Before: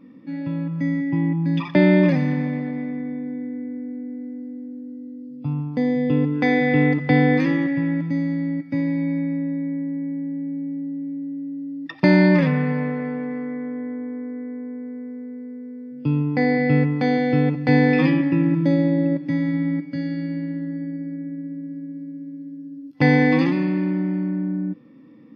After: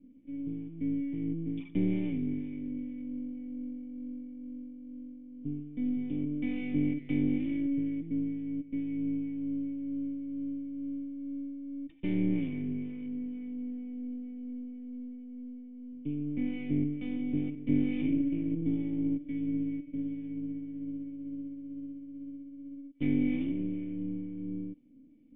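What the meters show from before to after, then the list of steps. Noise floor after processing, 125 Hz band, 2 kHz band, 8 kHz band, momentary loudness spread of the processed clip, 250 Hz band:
−49 dBFS, −16.0 dB, −24.0 dB, can't be measured, 14 LU, −11.0 dB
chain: two-band tremolo in antiphase 2.2 Hz, depth 50%, crossover 420 Hz
half-wave rectification
formant resonators in series i

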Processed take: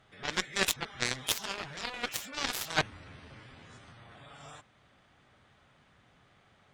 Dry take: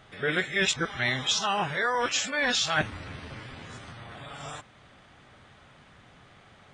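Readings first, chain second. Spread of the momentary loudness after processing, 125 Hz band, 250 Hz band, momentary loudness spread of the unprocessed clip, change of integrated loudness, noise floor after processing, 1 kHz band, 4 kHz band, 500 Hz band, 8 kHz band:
22 LU, −8.0 dB, −8.0 dB, 18 LU, −6.5 dB, −65 dBFS, −8.5 dB, −6.0 dB, −9.0 dB, −4.0 dB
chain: harmonic generator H 3 −8 dB, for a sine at −13.5 dBFS
level +5 dB

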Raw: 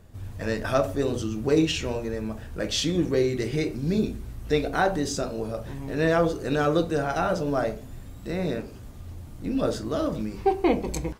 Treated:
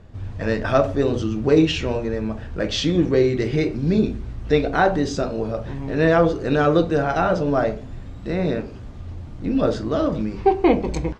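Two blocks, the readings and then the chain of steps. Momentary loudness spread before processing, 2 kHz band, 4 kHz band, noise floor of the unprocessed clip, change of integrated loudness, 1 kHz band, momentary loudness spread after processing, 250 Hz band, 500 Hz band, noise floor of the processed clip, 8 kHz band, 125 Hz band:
12 LU, +5.0 dB, +2.5 dB, −42 dBFS, +5.5 dB, +5.5 dB, 12 LU, +6.0 dB, +5.5 dB, −36 dBFS, −3.5 dB, +6.0 dB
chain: high-frequency loss of the air 130 metres
level +6 dB

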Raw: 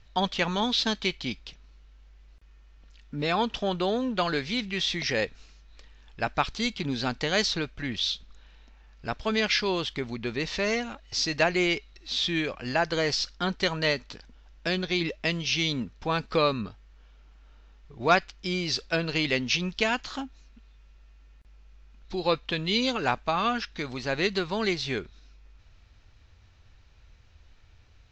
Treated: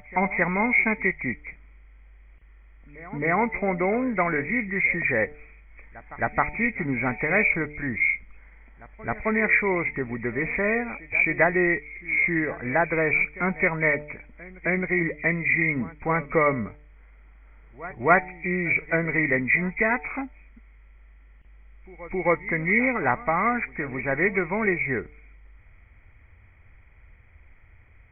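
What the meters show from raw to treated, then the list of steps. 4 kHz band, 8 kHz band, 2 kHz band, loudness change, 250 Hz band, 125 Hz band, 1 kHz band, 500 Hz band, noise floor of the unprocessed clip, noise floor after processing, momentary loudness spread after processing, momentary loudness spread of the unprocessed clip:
below −35 dB, below −40 dB, +8.5 dB, +4.0 dB, +3.0 dB, +3.0 dB, +3.0 dB, +3.0 dB, −55 dBFS, −52 dBFS, 10 LU, 9 LU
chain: hearing-aid frequency compression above 1,800 Hz 4 to 1
hum removal 148.7 Hz, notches 6
backwards echo 266 ms −19 dB
level +3 dB

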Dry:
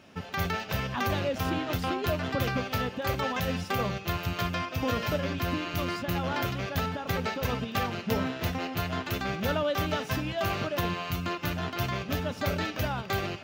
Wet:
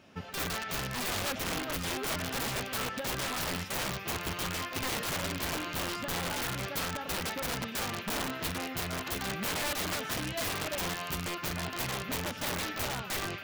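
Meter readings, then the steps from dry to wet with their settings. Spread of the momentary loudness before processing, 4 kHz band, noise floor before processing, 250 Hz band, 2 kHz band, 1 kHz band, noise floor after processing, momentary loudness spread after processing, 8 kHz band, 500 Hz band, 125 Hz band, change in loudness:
3 LU, +1.0 dB, −42 dBFS, −6.5 dB, −1.5 dB, −4.5 dB, −42 dBFS, 2 LU, +8.5 dB, −6.5 dB, −8.5 dB, −3.0 dB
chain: echo through a band-pass that steps 117 ms, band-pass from 1,600 Hz, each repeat 0.7 octaves, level −3.5 dB
wrap-around overflow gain 24 dB
level −3.5 dB

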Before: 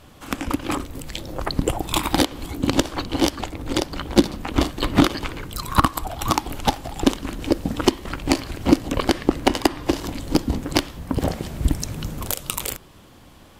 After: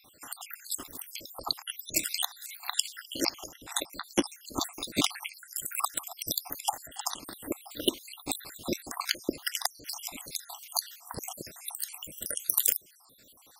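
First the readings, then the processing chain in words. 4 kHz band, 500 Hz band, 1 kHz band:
−6.0 dB, −15.0 dB, −13.5 dB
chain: time-frequency cells dropped at random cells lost 71%
RIAA equalisation recording
level −6.5 dB

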